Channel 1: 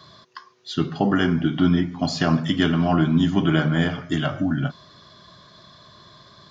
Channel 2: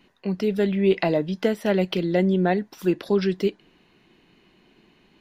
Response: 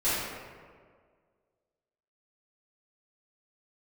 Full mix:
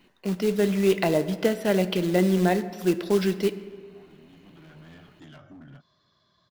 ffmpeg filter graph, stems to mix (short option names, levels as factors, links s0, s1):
-filter_complex "[0:a]acompressor=threshold=0.0501:ratio=1.5,volume=15.8,asoftclip=hard,volume=0.0631,adelay=1100,volume=0.112[s0];[1:a]acrusher=bits=4:mode=log:mix=0:aa=0.000001,volume=0.841,asplit=3[s1][s2][s3];[s2]volume=0.0668[s4];[s3]apad=whole_len=339674[s5];[s0][s5]sidechaincompress=threshold=0.0178:ratio=8:attack=33:release=1370[s6];[2:a]atrim=start_sample=2205[s7];[s4][s7]afir=irnorm=-1:irlink=0[s8];[s6][s1][s8]amix=inputs=3:normalize=0"